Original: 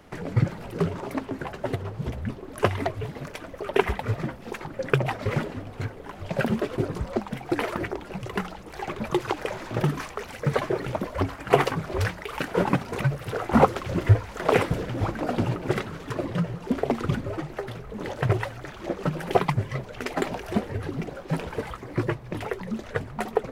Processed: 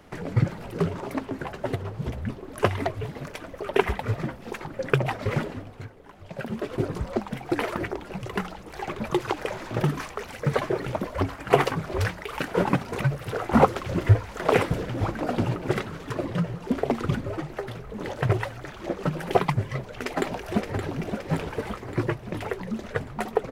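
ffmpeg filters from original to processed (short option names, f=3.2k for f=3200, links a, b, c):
-filter_complex "[0:a]asplit=2[a][b];[b]afade=t=in:st=19.9:d=0.01,afade=t=out:st=20.94:d=0.01,aecho=0:1:570|1140|1710|2280|2850|3420|3990|4560:0.446684|0.26801|0.160806|0.0964837|0.0578902|0.0347341|0.0208405|0.0125043[c];[a][c]amix=inputs=2:normalize=0,asplit=3[d][e][f];[d]atrim=end=5.85,asetpts=PTS-STARTPTS,afade=t=out:st=5.51:d=0.34:silence=0.354813[g];[e]atrim=start=5.85:end=6.47,asetpts=PTS-STARTPTS,volume=-9dB[h];[f]atrim=start=6.47,asetpts=PTS-STARTPTS,afade=t=in:d=0.34:silence=0.354813[i];[g][h][i]concat=n=3:v=0:a=1"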